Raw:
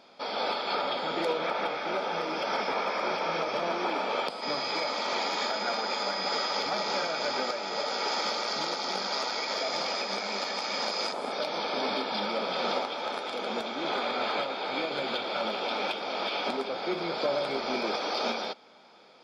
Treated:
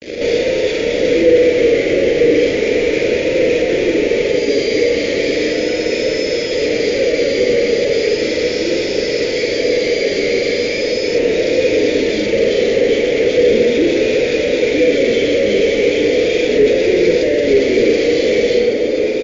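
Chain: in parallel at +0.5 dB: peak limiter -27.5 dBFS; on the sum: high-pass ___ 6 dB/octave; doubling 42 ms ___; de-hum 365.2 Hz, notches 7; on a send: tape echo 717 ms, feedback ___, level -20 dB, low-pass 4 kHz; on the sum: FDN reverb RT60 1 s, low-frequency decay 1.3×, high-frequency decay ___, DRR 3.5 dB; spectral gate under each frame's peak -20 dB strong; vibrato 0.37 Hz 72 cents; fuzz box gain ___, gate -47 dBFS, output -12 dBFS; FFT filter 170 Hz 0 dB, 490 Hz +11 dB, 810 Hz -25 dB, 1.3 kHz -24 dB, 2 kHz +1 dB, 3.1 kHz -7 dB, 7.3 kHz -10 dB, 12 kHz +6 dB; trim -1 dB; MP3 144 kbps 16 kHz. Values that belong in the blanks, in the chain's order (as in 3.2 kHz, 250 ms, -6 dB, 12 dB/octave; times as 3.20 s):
190 Hz, -3.5 dB, 77%, 0.75×, 46 dB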